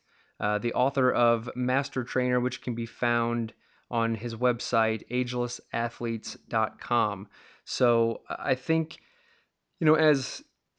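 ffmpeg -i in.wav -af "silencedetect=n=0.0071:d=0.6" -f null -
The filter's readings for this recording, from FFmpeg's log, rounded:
silence_start: 8.98
silence_end: 9.81 | silence_duration: 0.83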